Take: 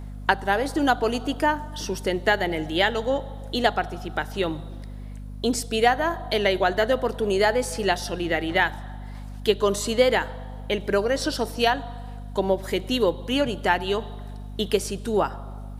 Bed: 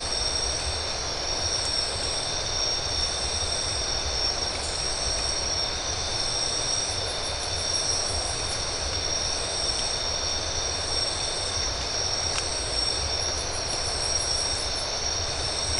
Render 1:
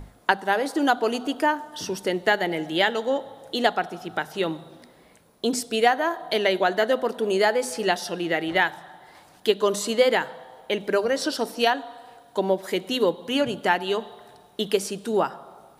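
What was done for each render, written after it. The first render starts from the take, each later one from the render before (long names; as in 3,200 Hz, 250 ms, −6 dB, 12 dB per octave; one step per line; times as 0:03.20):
mains-hum notches 50/100/150/200/250 Hz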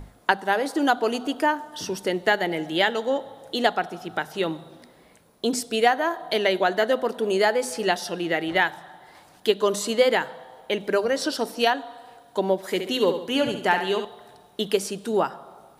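0:12.65–0:14.05: flutter between parallel walls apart 11.8 metres, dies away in 0.52 s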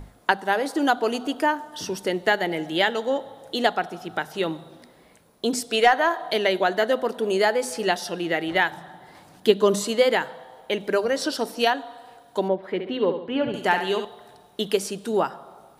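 0:05.69–0:06.31: mid-hump overdrive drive 10 dB, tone 5,100 Hz, clips at −4.5 dBFS
0:08.71–0:09.84: parametric band 170 Hz +8 dB 2.3 octaves
0:12.48–0:13.54: high-frequency loss of the air 430 metres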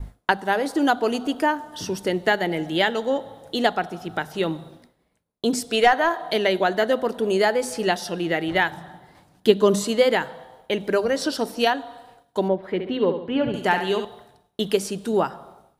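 downward expander −42 dBFS
low-shelf EQ 160 Hz +10.5 dB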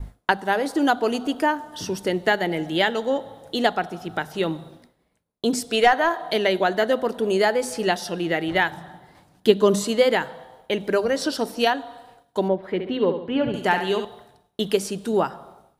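no processing that can be heard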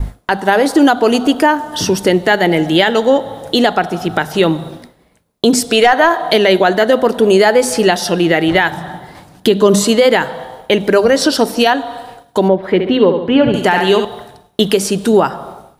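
in parallel at −2 dB: downward compressor, threshold −30 dBFS, peak gain reduction 19 dB
on the sum: boost into a limiter +10.5 dB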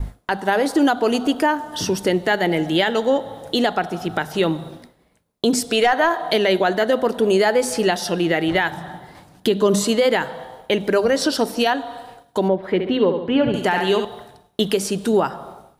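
level −7 dB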